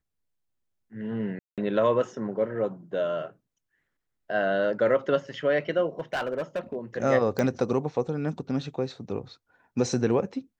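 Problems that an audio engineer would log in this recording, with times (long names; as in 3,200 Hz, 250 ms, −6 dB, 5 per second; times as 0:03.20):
0:01.39–0:01.58: drop-out 187 ms
0:06.00–0:06.76: clipping −24.5 dBFS
0:07.39: click −14 dBFS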